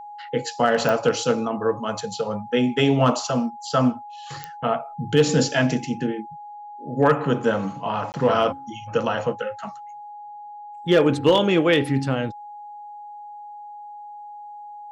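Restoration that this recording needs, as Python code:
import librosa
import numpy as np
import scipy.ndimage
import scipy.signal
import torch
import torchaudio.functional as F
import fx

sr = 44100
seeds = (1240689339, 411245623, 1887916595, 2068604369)

y = fx.fix_declip(x, sr, threshold_db=-8.5)
y = fx.fix_declick_ar(y, sr, threshold=10.0)
y = fx.notch(y, sr, hz=830.0, q=30.0)
y = fx.fix_interpolate(y, sr, at_s=(8.12,), length_ms=19.0)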